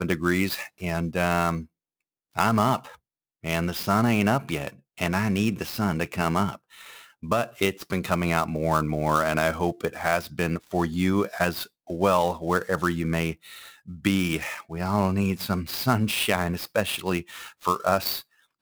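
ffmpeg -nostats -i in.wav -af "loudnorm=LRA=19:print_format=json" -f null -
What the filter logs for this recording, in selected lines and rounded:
"input_i" : "-25.8",
"input_tp" : "-6.8",
"input_lra" : "1.2",
"input_thresh" : "-36.1",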